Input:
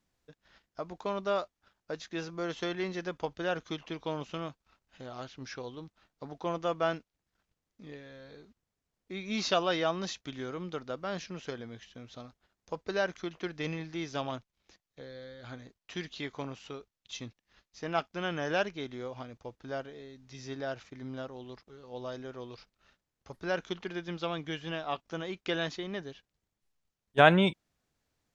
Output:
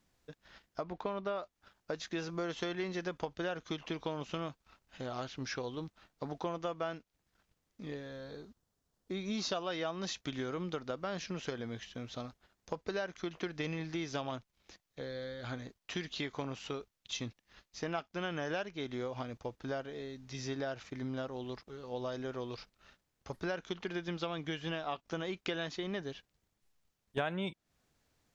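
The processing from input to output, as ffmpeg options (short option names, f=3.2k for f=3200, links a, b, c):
-filter_complex "[0:a]asettb=1/sr,asplit=3[a][b][c];[a]atrim=end=0.834[d];[b]atrim=start=0.83:end=1.43,asetpts=PTS-STARTPTS,afade=t=in:d=0.004:c=qsin,afade=t=out:st=0.596:d=0.004:c=qsin,lowpass=3.5k[e];[c]atrim=start=1.426[f];[d][e]acrossfade=d=0.004:c1=hsin:c2=qsin[g];[g][f]acrossfade=d=0.004:c1=qsin:c2=hsin,asettb=1/sr,asplit=3[h][i][j];[h]atrim=end=7.934[k];[i]atrim=start=7.93:end=9.56,asetpts=PTS-STARTPTS,afade=t=in:d=0.004:c=qsin,afade=t=out:st=1.626:d=0.004:c=qsin,equalizer=f=2.3k:t=o:w=0.73:g=-7.5[l];[j]atrim=start=9.556[m];[k][l]acrossfade=d=0.004:c1=hsin:c2=qsin[n];[n][m]acrossfade=d=0.004:c1=qsin:c2=hsin,acompressor=threshold=-39dB:ratio=5,volume=4.5dB"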